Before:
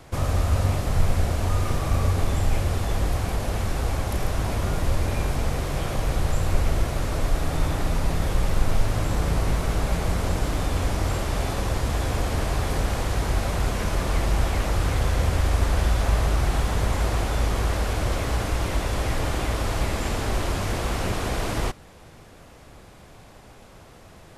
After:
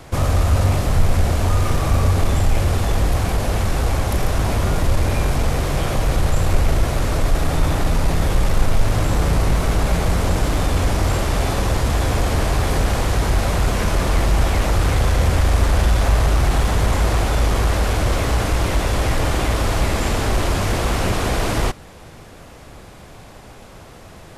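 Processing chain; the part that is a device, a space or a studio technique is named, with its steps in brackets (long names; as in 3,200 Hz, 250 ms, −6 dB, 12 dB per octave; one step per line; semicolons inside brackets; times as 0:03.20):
parallel distortion (in parallel at −5 dB: hard clipping −21.5 dBFS, distortion −9 dB)
on the sum: level +3 dB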